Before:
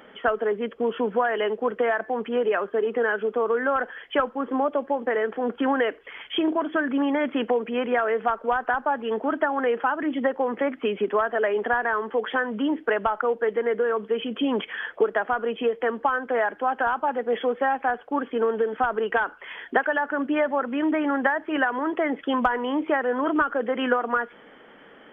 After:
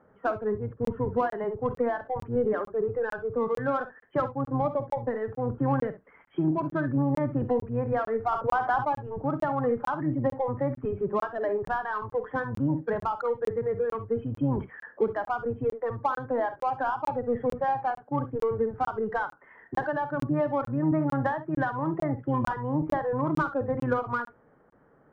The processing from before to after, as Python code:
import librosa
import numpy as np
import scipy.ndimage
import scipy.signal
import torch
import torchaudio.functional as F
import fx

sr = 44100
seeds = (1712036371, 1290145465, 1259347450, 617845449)

p1 = fx.octave_divider(x, sr, octaves=1, level_db=0.0)
p2 = scipy.signal.sosfilt(scipy.signal.butter(4, 1400.0, 'lowpass', fs=sr, output='sos'), p1)
p3 = 10.0 ** (-25.0 / 20.0) * np.tanh(p2 / 10.0 ** (-25.0 / 20.0))
p4 = p2 + F.gain(torch.from_numpy(p3), -7.5).numpy()
p5 = fx.noise_reduce_blind(p4, sr, reduce_db=9)
p6 = p5 + fx.room_early_taps(p5, sr, ms=(51, 67), db=(-14.5, -15.0), dry=0)
p7 = fx.buffer_crackle(p6, sr, first_s=0.85, period_s=0.45, block=1024, kind='zero')
p8 = fx.env_flatten(p7, sr, amount_pct=50, at=(8.31, 8.84), fade=0.02)
y = F.gain(torch.from_numpy(p8), -5.0).numpy()